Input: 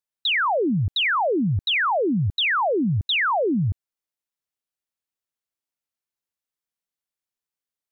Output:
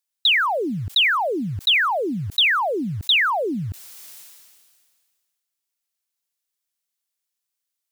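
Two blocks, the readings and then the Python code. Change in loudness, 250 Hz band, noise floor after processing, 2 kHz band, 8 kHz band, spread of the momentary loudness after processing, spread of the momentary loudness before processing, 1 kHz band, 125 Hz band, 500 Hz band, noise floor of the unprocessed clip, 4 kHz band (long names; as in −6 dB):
+2.0 dB, −3.5 dB, −82 dBFS, +3.0 dB, can't be measured, 10 LU, 3 LU, 0.0 dB, −5.5 dB, −2.0 dB, below −85 dBFS, +5.5 dB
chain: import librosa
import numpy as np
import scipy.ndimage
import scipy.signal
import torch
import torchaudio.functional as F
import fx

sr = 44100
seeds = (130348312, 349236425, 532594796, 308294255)

p1 = fx.high_shelf(x, sr, hz=2400.0, db=11.0)
p2 = fx.quant_float(p1, sr, bits=2)
p3 = p1 + (p2 * 10.0 ** (-11.0 / 20.0))
p4 = fx.low_shelf(p3, sr, hz=200.0, db=-6.5)
p5 = fx.sustainer(p4, sr, db_per_s=31.0)
y = p5 * 10.0 ** (-3.5 / 20.0)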